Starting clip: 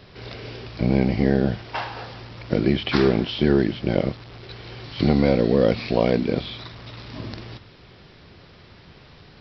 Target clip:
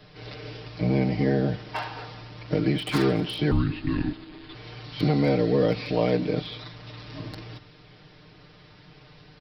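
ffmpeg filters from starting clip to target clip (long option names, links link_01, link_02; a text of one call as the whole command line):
ffmpeg -i in.wav -filter_complex "[0:a]aecho=1:1:6.6:0.97,asettb=1/sr,asplit=3[link_01][link_02][link_03];[link_01]atrim=end=3.514[link_04];[link_02]atrim=start=3.51:end=4.55,asetpts=PTS-STARTPTS,afade=type=in:duration=0.004:curve=qsin,afade=type=out:start_time=1.036:duration=0.004:curve=qsin,afreqshift=-440[link_05];[link_03]atrim=start=4.546[link_06];[link_04][link_05]acrossfade=duration=0.004:curve1=hsin:curve2=qsin[link_07];[link_07][link_06]acrossfade=duration=0.004:curve1=qsin:curve2=hsin,acrossover=split=380|1300[link_08][link_09][link_10];[link_10]aeval=exprs='0.0841*(abs(mod(val(0)/0.0841+3,4)-2)-1)':channel_layout=same[link_11];[link_08][link_09][link_11]amix=inputs=3:normalize=0,aecho=1:1:224:0.0668,volume=-6dB" out.wav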